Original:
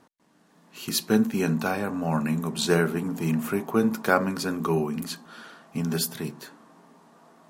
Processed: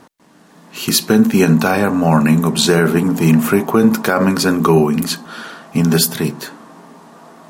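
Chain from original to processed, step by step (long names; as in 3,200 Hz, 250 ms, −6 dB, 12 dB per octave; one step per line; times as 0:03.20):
boost into a limiter +15 dB
level −1 dB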